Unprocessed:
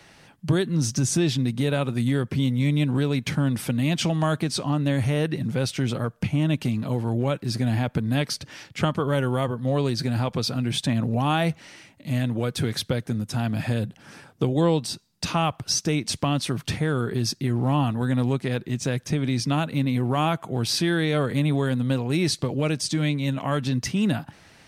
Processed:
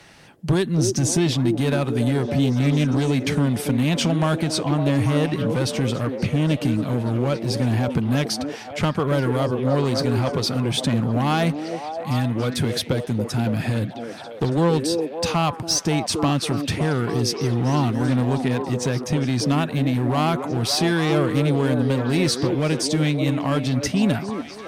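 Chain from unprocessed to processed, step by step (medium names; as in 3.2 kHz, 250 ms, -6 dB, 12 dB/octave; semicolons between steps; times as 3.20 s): one-sided clip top -18.5 dBFS; repeats whose band climbs or falls 280 ms, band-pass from 370 Hz, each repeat 0.7 oct, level -1.5 dB; trim +3 dB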